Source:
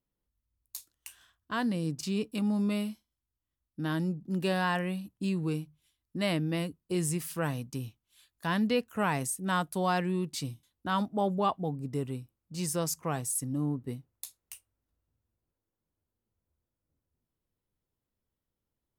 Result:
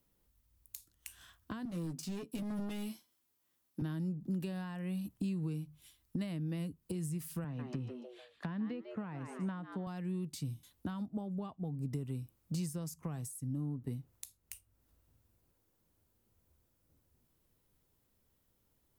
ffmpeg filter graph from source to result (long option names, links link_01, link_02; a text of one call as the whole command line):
ffmpeg -i in.wav -filter_complex "[0:a]asettb=1/sr,asplit=3[link_01][link_02][link_03];[link_01]atrim=end=1.654[link_04];[link_02]atrim=start=1.65:end=3.82,asetpts=PTS-STARTPTS,afade=type=in:duration=0.004:curve=qsin,afade=type=out:start_time=2.166:duration=0.004:curve=qsin,highpass=230,asoftclip=type=hard:threshold=-35dB,asplit=2[link_05][link_06];[link_06]adelay=12,volume=-6dB[link_07];[link_05][link_07]amix=inputs=2:normalize=0,atrim=end_sample=95697[link_08];[link_03]atrim=start=3.816[link_09];[link_04][link_08]acrossfade=duration=0.004:curve1=hsin:curve2=qsin[link_10];[link_10][link_09]acrossfade=duration=0.004:curve1=qsin:curve2=hsin,asettb=1/sr,asplit=3[link_11][link_12][link_13];[link_11]atrim=end=7.444[link_14];[link_12]atrim=start=7.44:end=9.87,asetpts=PTS-STARTPTS,afade=type=in:duration=0.004:curve=qsin,afade=type=out:start_time=2.426:duration=0.004:curve=qsin,highpass=140,lowpass=2300,asplit=4[link_15][link_16][link_17][link_18];[link_16]adelay=146,afreqshift=120,volume=-11.5dB[link_19];[link_17]adelay=292,afreqshift=240,volume=-21.7dB[link_20];[link_18]adelay=438,afreqshift=360,volume=-31.8dB[link_21];[link_15][link_19][link_20][link_21]amix=inputs=4:normalize=0,atrim=end_sample=107163[link_22];[link_13]atrim=start=9.866[link_23];[link_14][link_22]acrossfade=duration=0.004:curve1=hsin:curve2=qsin[link_24];[link_24][link_23]acrossfade=duration=0.004:curve1=qsin:curve2=hsin,acompressor=threshold=-42dB:ratio=6,highshelf=frequency=9800:gain=7,acrossover=split=240[link_25][link_26];[link_26]acompressor=threshold=-56dB:ratio=6[link_27];[link_25][link_27]amix=inputs=2:normalize=0,volume=9.5dB" out.wav